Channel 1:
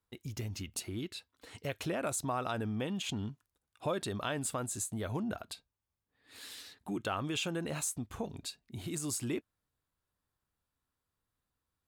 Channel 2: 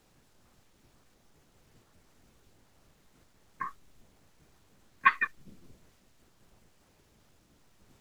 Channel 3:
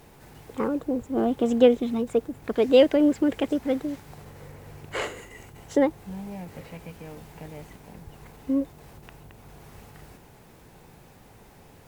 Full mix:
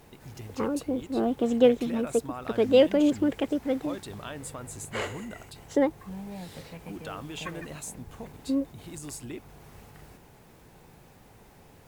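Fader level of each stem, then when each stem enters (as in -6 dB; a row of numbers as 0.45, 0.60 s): -4.0, -18.0, -2.5 dB; 0.00, 2.40, 0.00 s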